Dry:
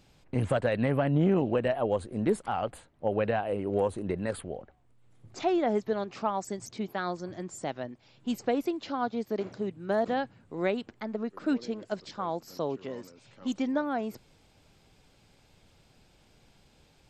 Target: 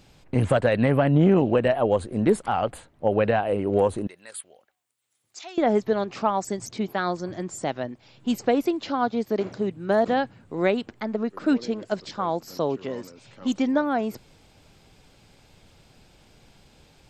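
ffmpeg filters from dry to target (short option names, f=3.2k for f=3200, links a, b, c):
-filter_complex "[0:a]asettb=1/sr,asplit=3[a][b][c];[a]atrim=end=4.074[d];[b]atrim=start=4.07:end=5.58,asetpts=PTS-STARTPTS,afade=t=in:d=0.004:c=qsin,afade=t=out:st=1.506:d=0.004:c=qsin,aderivative[e];[c]atrim=start=5.576[f];[d][e]acrossfade=d=0.004:c1=hsin:c2=qsin[g];[g][f]acrossfade=d=0.004:c1=qsin:c2=hsin,volume=6.5dB"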